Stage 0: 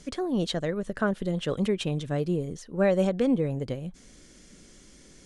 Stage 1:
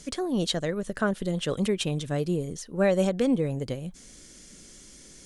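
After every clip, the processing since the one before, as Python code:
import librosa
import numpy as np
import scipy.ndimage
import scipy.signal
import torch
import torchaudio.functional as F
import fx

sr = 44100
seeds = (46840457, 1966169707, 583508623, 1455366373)

y = fx.high_shelf(x, sr, hz=4700.0, db=10.0)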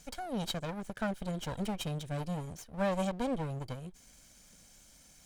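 y = fx.lower_of_two(x, sr, delay_ms=1.3)
y = y * librosa.db_to_amplitude(-8.0)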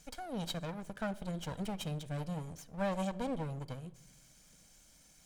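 y = fx.room_shoebox(x, sr, seeds[0], volume_m3=3300.0, walls='furnished', distance_m=0.57)
y = y * librosa.db_to_amplitude(-3.5)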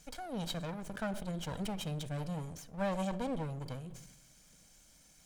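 y = fx.sustainer(x, sr, db_per_s=56.0)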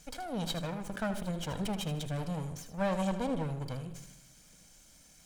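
y = fx.echo_feedback(x, sr, ms=78, feedback_pct=34, wet_db=-11.0)
y = y * librosa.db_to_amplitude(3.0)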